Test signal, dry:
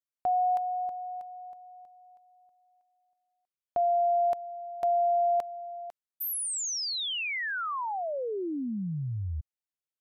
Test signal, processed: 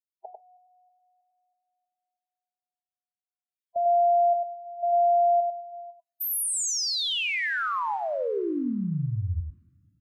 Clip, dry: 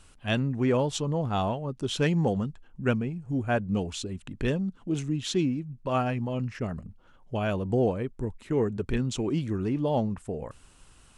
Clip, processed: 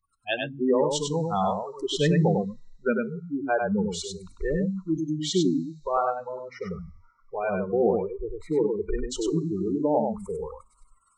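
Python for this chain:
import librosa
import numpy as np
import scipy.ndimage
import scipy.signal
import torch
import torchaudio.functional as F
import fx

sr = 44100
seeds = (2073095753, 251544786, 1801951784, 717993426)

y = fx.spec_gate(x, sr, threshold_db=-20, keep='strong')
y = fx.rev_double_slope(y, sr, seeds[0], early_s=0.51, late_s=2.7, knee_db=-16, drr_db=16.0)
y = fx.noise_reduce_blind(y, sr, reduce_db=29)
y = y + 10.0 ** (-4.0 / 20.0) * np.pad(y, (int(98 * sr / 1000.0), 0))[:len(y)]
y = y * 10.0 ** (3.0 / 20.0)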